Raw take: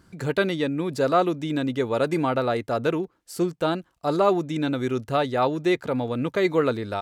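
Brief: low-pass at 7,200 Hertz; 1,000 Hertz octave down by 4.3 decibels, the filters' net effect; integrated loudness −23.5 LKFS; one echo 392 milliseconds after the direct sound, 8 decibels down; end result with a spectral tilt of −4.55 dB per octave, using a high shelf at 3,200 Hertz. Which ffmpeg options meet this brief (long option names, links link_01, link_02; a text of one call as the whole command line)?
ffmpeg -i in.wav -af "lowpass=7200,equalizer=frequency=1000:width_type=o:gain=-7.5,highshelf=frequency=3200:gain=8.5,aecho=1:1:392:0.398,volume=1.5dB" out.wav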